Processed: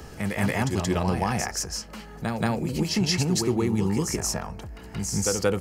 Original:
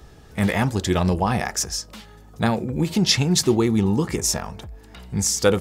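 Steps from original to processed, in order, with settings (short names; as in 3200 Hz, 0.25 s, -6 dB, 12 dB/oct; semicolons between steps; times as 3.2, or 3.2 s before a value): notch 3600 Hz, Q 5.2; on a send: reverse echo 0.178 s -5.5 dB; on the sum: three-band squash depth 40%; gain -5 dB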